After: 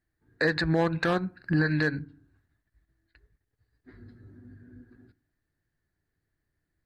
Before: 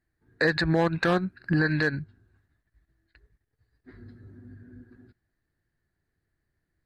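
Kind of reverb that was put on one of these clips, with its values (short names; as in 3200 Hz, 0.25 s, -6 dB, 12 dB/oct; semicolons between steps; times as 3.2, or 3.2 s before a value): FDN reverb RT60 0.45 s, low-frequency decay 1.45×, high-frequency decay 0.4×, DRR 18.5 dB; gain -2 dB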